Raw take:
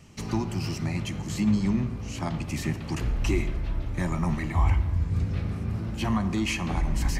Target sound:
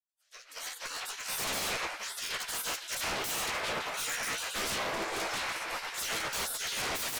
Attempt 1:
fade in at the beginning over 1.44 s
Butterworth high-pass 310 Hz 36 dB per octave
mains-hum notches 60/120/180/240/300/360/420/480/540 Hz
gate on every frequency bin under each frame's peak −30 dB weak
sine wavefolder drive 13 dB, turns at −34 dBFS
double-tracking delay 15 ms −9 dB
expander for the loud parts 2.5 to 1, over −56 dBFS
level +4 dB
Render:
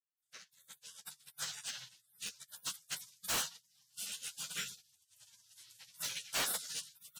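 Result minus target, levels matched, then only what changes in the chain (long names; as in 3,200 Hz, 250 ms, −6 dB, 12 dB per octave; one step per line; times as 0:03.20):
250 Hz band −6.5 dB
remove: Butterworth high-pass 310 Hz 36 dB per octave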